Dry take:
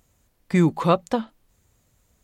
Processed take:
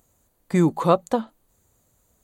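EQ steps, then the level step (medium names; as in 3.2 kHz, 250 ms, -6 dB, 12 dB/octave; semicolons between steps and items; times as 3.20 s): bass shelf 260 Hz -8.5 dB; peaking EQ 2.5 kHz -9.5 dB 1.8 oct; band-stop 5.3 kHz, Q 5.2; +4.5 dB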